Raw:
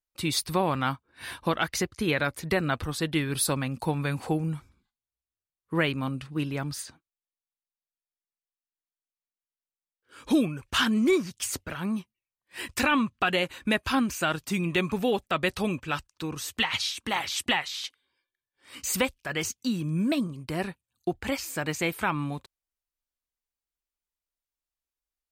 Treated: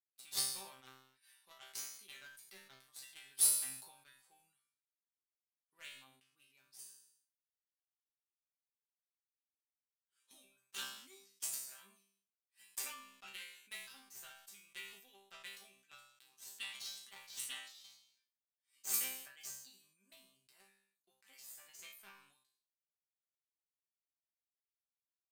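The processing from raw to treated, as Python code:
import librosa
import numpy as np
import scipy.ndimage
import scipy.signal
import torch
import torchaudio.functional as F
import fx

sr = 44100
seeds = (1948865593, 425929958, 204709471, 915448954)

y = np.diff(x, prepend=0.0)
y = fx.cheby_harmonics(y, sr, harmonics=(5, 7), levels_db=(-28, -16), full_scale_db=-12.5)
y = fx.resonator_bank(y, sr, root=48, chord='fifth', decay_s=0.43)
y = fx.sustainer(y, sr, db_per_s=73.0)
y = y * librosa.db_to_amplitude(12.5)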